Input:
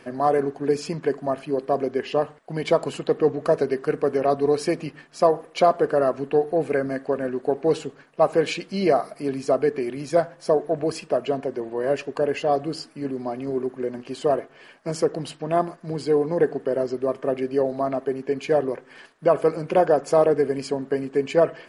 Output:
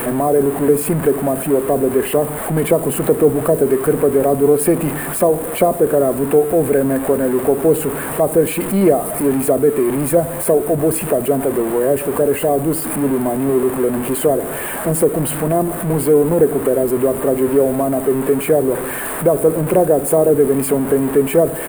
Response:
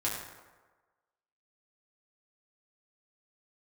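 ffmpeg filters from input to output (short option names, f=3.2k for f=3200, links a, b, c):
-filter_complex "[0:a]aeval=exprs='val(0)+0.5*0.0562*sgn(val(0))':c=same,firequalizer=gain_entry='entry(980,0);entry(5700,-25);entry(8700,6)':delay=0.05:min_phase=1,acrossover=split=530|4100[a][b][c];[b]acompressor=threshold=-31dB:ratio=6[d];[a][d][c]amix=inputs=3:normalize=0,volume=8dB"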